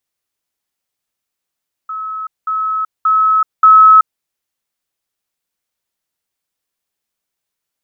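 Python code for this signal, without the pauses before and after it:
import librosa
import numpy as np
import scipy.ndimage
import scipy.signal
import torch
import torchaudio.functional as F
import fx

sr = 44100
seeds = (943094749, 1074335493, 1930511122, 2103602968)

y = fx.level_ladder(sr, hz=1290.0, from_db=-20.5, step_db=6.0, steps=4, dwell_s=0.38, gap_s=0.2)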